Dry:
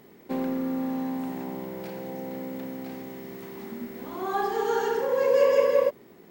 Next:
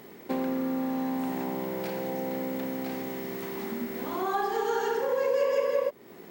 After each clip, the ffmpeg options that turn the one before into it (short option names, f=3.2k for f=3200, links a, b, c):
-af "lowshelf=f=280:g=-5.5,acompressor=threshold=-35dB:ratio=2.5,volume=6.5dB"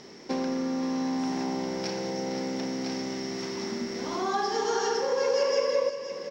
-af "lowpass=f=5.5k:t=q:w=12,aecho=1:1:522:0.299"